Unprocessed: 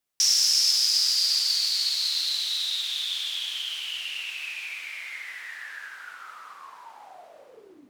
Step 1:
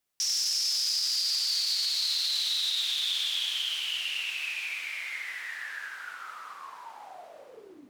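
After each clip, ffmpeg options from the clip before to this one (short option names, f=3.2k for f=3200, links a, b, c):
-af "alimiter=limit=-21dB:level=0:latency=1:release=19,volume=1dB"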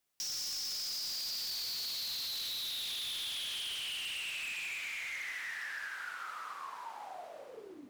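-filter_complex "[0:a]asoftclip=type=hard:threshold=-34dB,acrossover=split=230[a][b];[b]acompressor=threshold=-38dB:ratio=3[c];[a][c]amix=inputs=2:normalize=0"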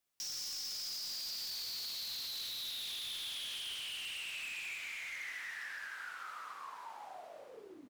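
-filter_complex "[0:a]asplit=2[a][b];[b]adelay=19,volume=-12.5dB[c];[a][c]amix=inputs=2:normalize=0,volume=-3.5dB"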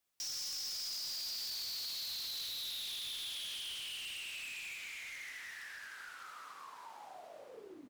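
-filter_complex "[0:a]aeval=exprs='0.0119*(abs(mod(val(0)/0.0119+3,4)-2)-1)':c=same,acrossover=split=460|3000[a][b][c];[b]acompressor=threshold=-54dB:ratio=2[d];[a][d][c]amix=inputs=3:normalize=0,volume=1dB"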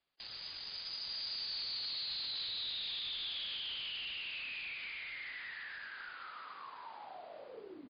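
-filter_complex "[0:a]asplit=2[a][b];[b]adelay=70,lowpass=f=4.3k:p=1,volume=-19.5dB,asplit=2[c][d];[d]adelay=70,lowpass=f=4.3k:p=1,volume=0.49,asplit=2[e][f];[f]adelay=70,lowpass=f=4.3k:p=1,volume=0.49,asplit=2[g][h];[h]adelay=70,lowpass=f=4.3k:p=1,volume=0.49[i];[a][c][e][g][i]amix=inputs=5:normalize=0,volume=2.5dB" -ar 11025 -c:a libmp3lame -b:a 32k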